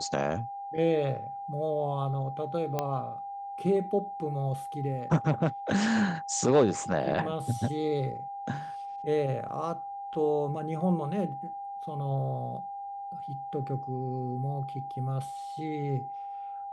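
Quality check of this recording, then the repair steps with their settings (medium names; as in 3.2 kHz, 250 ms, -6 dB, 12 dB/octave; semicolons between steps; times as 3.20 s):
whine 800 Hz -36 dBFS
2.79 s: pop -15 dBFS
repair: de-click; band-stop 800 Hz, Q 30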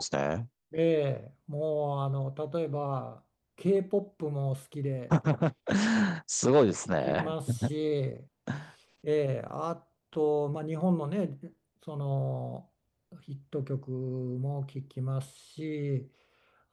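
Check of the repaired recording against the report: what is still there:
2.79 s: pop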